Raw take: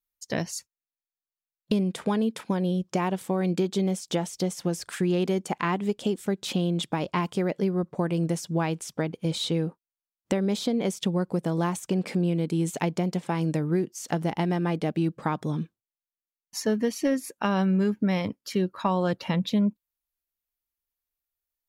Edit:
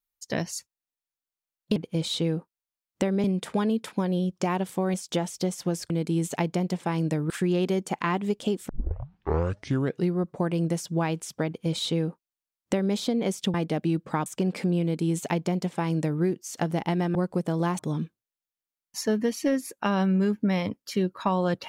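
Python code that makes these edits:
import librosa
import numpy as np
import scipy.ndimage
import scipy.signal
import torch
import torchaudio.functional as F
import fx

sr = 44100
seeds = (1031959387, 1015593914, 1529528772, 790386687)

y = fx.edit(x, sr, fx.cut(start_s=3.46, length_s=0.47),
    fx.tape_start(start_s=6.28, length_s=1.49),
    fx.duplicate(start_s=9.06, length_s=1.48, to_s=1.76),
    fx.swap(start_s=11.13, length_s=0.64, other_s=14.66, other_length_s=0.72),
    fx.duplicate(start_s=12.33, length_s=1.4, to_s=4.89), tone=tone)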